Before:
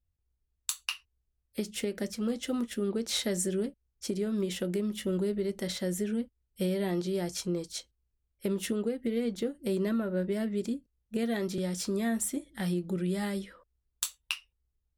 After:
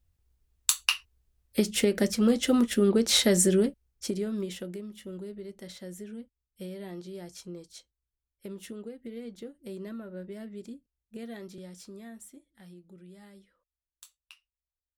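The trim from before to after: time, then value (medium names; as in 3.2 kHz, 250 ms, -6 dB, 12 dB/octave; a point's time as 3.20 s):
3.53 s +8.5 dB
4.52 s -3.5 dB
4.89 s -10 dB
11.31 s -10 dB
12.63 s -19.5 dB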